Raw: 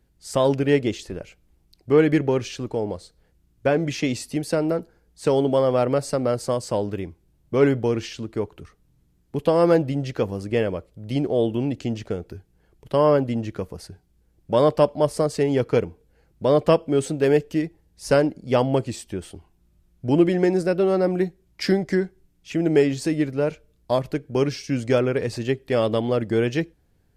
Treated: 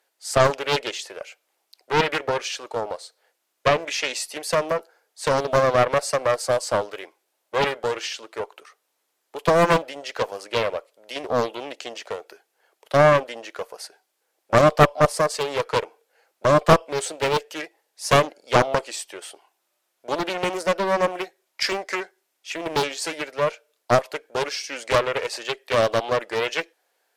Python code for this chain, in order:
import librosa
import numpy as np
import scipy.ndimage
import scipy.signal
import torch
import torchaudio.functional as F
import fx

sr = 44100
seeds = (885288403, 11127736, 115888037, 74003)

y = scipy.signal.sosfilt(scipy.signal.butter(4, 570.0, 'highpass', fs=sr, output='sos'), x)
y = fx.cheby_harmonics(y, sr, harmonics=(2,), levels_db=(-17,), full_scale_db=-8.0)
y = fx.doppler_dist(y, sr, depth_ms=0.93)
y = F.gain(torch.from_numpy(y), 6.0).numpy()